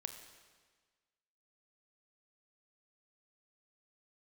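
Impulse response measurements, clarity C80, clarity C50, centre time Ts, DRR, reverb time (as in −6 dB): 9.0 dB, 8.0 dB, 25 ms, 6.5 dB, 1.5 s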